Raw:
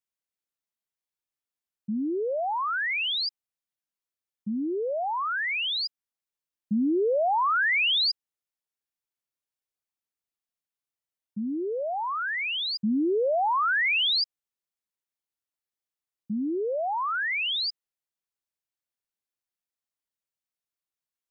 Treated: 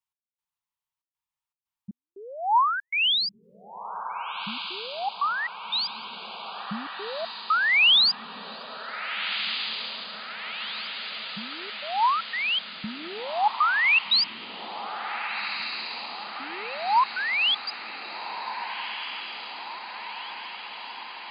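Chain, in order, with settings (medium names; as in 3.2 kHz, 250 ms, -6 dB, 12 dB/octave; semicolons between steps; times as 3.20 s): FFT filter 170 Hz 0 dB, 270 Hz -20 dB, 610 Hz -12 dB, 940 Hz +9 dB, 1.5 kHz -3 dB, 2.8 kHz 0 dB, 5.4 kHz -5 dB; trance gate "x..xxxxx.xxx.x" 118 bpm -60 dB; dynamic bell 3.6 kHz, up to +6 dB, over -34 dBFS, Q 0.94; on a send: echo that smears into a reverb 1586 ms, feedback 70%, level -9.5 dB; on the sum: trim +2 dB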